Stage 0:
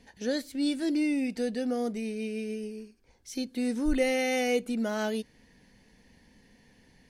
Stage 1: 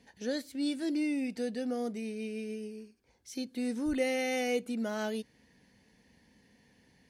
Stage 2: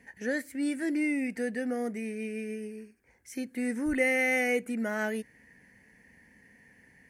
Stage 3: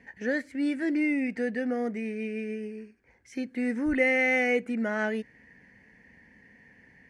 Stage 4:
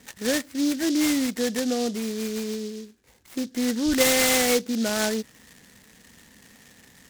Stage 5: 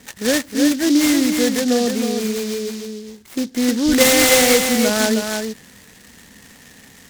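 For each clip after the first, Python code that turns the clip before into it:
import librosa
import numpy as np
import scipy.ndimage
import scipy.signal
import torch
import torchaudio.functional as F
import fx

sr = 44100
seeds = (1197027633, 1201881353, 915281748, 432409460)

y1 = scipy.signal.sosfilt(scipy.signal.butter(2, 64.0, 'highpass', fs=sr, output='sos'), x)
y1 = y1 * librosa.db_to_amplitude(-4.0)
y2 = fx.curve_eq(y1, sr, hz=(1200.0, 1900.0, 3700.0, 8600.0), db=(0, 12, -13, 3))
y2 = y2 * librosa.db_to_amplitude(2.0)
y3 = scipy.signal.sosfilt(scipy.signal.butter(2, 4400.0, 'lowpass', fs=sr, output='sos'), y2)
y3 = y3 * librosa.db_to_amplitude(2.5)
y4 = fx.noise_mod_delay(y3, sr, seeds[0], noise_hz=4700.0, depth_ms=0.1)
y4 = y4 * librosa.db_to_amplitude(4.0)
y5 = y4 + 10.0 ** (-5.5 / 20.0) * np.pad(y4, (int(312 * sr / 1000.0), 0))[:len(y4)]
y5 = y5 * librosa.db_to_amplitude(6.5)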